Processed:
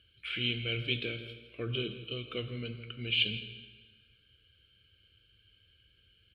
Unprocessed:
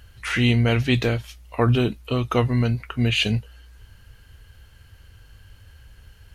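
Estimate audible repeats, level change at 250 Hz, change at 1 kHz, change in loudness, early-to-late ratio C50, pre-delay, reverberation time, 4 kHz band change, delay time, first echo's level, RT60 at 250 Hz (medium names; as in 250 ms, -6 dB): 1, -18.5 dB, -24.0 dB, -12.5 dB, 9.5 dB, 3 ms, 1.5 s, -4.0 dB, 164 ms, -15.0 dB, 1.5 s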